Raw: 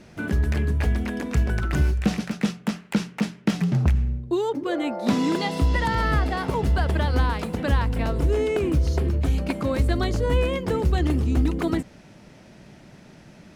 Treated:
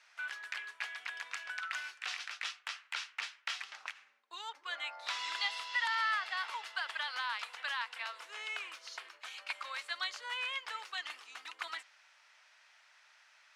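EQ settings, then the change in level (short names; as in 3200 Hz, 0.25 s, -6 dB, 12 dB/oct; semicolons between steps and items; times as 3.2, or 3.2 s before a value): HPF 1100 Hz 24 dB/oct; air absorption 54 m; dynamic EQ 3300 Hz, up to +5 dB, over -47 dBFS, Q 0.84; -5.5 dB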